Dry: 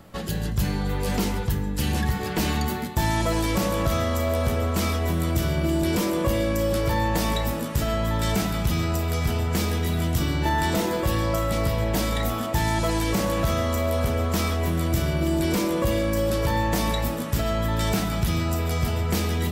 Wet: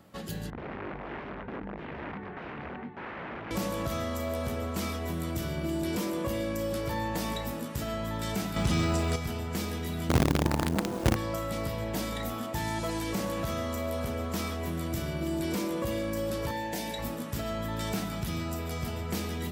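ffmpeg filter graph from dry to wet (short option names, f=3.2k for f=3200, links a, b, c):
-filter_complex "[0:a]asettb=1/sr,asplit=3[a][b][c];[a]atrim=end=0.504[d];[b]atrim=start=0.5:end=3.51,asetpts=PTS-STARTPTS,afade=t=in:d=0.004:c=qsin,afade=t=out:st=3.006:d=0.004:c=qsin,flanger=delay=19.5:depth=6.5:speed=2.9,aeval=exprs='(mod(15*val(0)+1,2)-1)/15':c=same,lowpass=f=2.2k:w=0.5412,lowpass=f=2.2k:w=1.3066[e];[c]atrim=start=3.506[f];[d][e]acrossfade=d=0.004:c1=hsin:c2=qsin[g];[g][f]acrossfade=d=0.004:c1=qsin:c2=hsin,asettb=1/sr,asplit=3[h][i][j];[h]atrim=end=8.564[k];[i]atrim=start=8.56:end=9.16,asetpts=PTS-STARTPTS,afade=t=in:d=0.004:c=qsin,afade=t=out:st=0.596:d=0.004:c=qsin,lowpass=f=9.6k:w=0.5412,lowpass=f=9.6k:w=1.3066,acontrast=83,acrusher=bits=8:dc=4:mix=0:aa=0.000001[l];[j]atrim=start=9.156[m];[k][l]acrossfade=d=0.004:c1=hsin:c2=qsin[n];[n][m]acrossfade=d=0.004:c1=qsin:c2=hsin,asettb=1/sr,asplit=3[o][p][q];[o]atrim=end=10.094[r];[p]atrim=start=10.09:end=11.16,asetpts=PTS-STARTPTS,afade=t=in:d=0.004:c=qsin,afade=t=out:st=1.066:d=0.004:c=qsin,lowpass=1.7k,tiltshelf=f=690:g=10,acrusher=bits=3:dc=4:mix=0:aa=0.000001[s];[q]atrim=start=11.156[t];[r][s]acrossfade=d=0.004:c1=hsin:c2=qsin[u];[u][t]acrossfade=d=0.004:c1=qsin:c2=hsin,asettb=1/sr,asplit=3[v][w][x];[v]atrim=end=16.514[y];[w]atrim=start=16.51:end=16.99,asetpts=PTS-STARTPTS,afade=t=in:d=0.004:c=qsin,afade=t=out:st=0.476:d=0.004:c=qsin,asuperstop=centerf=1200:order=4:qfactor=2.6,lowshelf=f=170:g=-11[z];[x]atrim=start=16.986[aa];[y][z]acrossfade=d=0.004:c1=hsin:c2=qsin[ab];[ab][aa]acrossfade=d=0.004:c1=qsin:c2=hsin,highpass=f=95:p=1,equalizer=f=240:t=o:w=0.77:g=2.5,volume=-8dB"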